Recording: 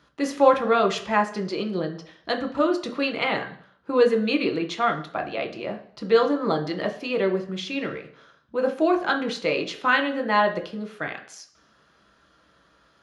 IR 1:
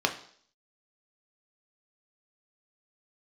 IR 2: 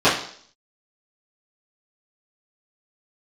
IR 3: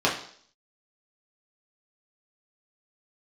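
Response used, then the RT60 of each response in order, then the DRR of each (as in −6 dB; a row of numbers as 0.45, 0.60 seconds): 1; 0.55, 0.55, 0.55 seconds; 3.0, −14.5, −5.0 decibels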